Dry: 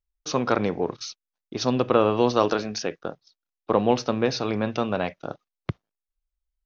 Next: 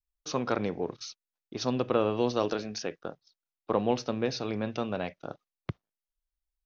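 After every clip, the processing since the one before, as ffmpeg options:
ffmpeg -i in.wav -af "adynamicequalizer=threshold=0.0141:dfrequency=1100:dqfactor=1.3:tfrequency=1100:tqfactor=1.3:attack=5:release=100:ratio=0.375:range=3:mode=cutabove:tftype=bell,volume=-6dB" out.wav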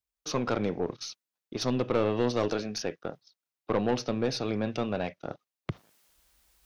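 ffmpeg -i in.wav -af "highpass=78,areverse,acompressor=mode=upward:threshold=-47dB:ratio=2.5,areverse,aeval=exprs='(tanh(12.6*val(0)+0.35)-tanh(0.35))/12.6':channel_layout=same,volume=3.5dB" out.wav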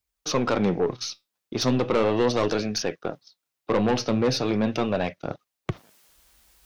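ffmpeg -i in.wav -filter_complex "[0:a]flanger=delay=0.4:depth=9:regen=75:speed=0.38:shape=sinusoidal,asplit=2[link_01][link_02];[link_02]aeval=exprs='0.133*sin(PI/2*2.51*val(0)/0.133)':channel_layout=same,volume=-9dB[link_03];[link_01][link_03]amix=inputs=2:normalize=0,volume=4dB" out.wav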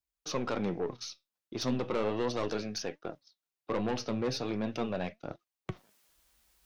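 ffmpeg -i in.wav -af "flanger=delay=2.9:depth=2.6:regen=83:speed=1.3:shape=sinusoidal,volume=-5dB" out.wav

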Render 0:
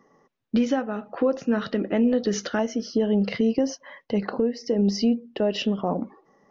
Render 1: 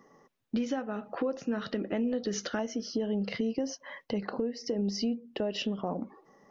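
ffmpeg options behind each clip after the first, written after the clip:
ffmpeg -i in.wav -af "highshelf=frequency=4900:gain=4.5,acompressor=threshold=-35dB:ratio=2" out.wav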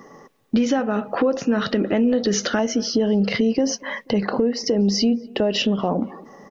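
ffmpeg -i in.wav -filter_complex "[0:a]asplit=2[link_01][link_02];[link_02]alimiter=level_in=6dB:limit=-24dB:level=0:latency=1:release=27,volume=-6dB,volume=2.5dB[link_03];[link_01][link_03]amix=inputs=2:normalize=0,asplit=2[link_04][link_05];[link_05]adelay=242,lowpass=frequency=1700:poles=1,volume=-23dB,asplit=2[link_06][link_07];[link_07]adelay=242,lowpass=frequency=1700:poles=1,volume=0.42,asplit=2[link_08][link_09];[link_09]adelay=242,lowpass=frequency=1700:poles=1,volume=0.42[link_10];[link_04][link_06][link_08][link_10]amix=inputs=4:normalize=0,volume=7.5dB" out.wav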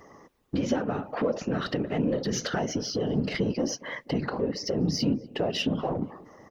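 ffmpeg -i in.wav -filter_complex "[0:a]asplit=2[link_01][link_02];[link_02]asoftclip=type=tanh:threshold=-22.5dB,volume=-7.5dB[link_03];[link_01][link_03]amix=inputs=2:normalize=0,afftfilt=real='hypot(re,im)*cos(2*PI*random(0))':imag='hypot(re,im)*sin(2*PI*random(1))':win_size=512:overlap=0.75,volume=-3.5dB" out.wav

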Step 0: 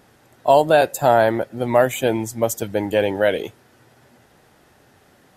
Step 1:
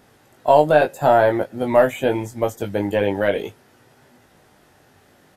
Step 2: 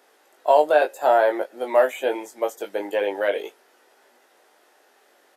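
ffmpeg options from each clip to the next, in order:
ffmpeg -i in.wav -filter_complex "[0:a]acrossover=split=2800[link_01][link_02];[link_02]acompressor=threshold=-39dB:ratio=4:attack=1:release=60[link_03];[link_01][link_03]amix=inputs=2:normalize=0,aeval=exprs='0.75*(cos(1*acos(clip(val(0)/0.75,-1,1)))-cos(1*PI/2))+0.00944*(cos(6*acos(clip(val(0)/0.75,-1,1)))-cos(6*PI/2))':channel_layout=same,asplit=2[link_04][link_05];[link_05]adelay=20,volume=-5.5dB[link_06];[link_04][link_06]amix=inputs=2:normalize=0,volume=-1dB" out.wav
ffmpeg -i in.wav -af "highpass=frequency=370:width=0.5412,highpass=frequency=370:width=1.3066,volume=-2.5dB" out.wav

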